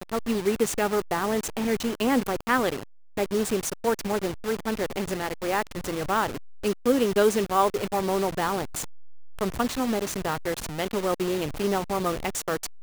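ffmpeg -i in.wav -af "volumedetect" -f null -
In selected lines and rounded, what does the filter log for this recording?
mean_volume: -26.7 dB
max_volume: -8.3 dB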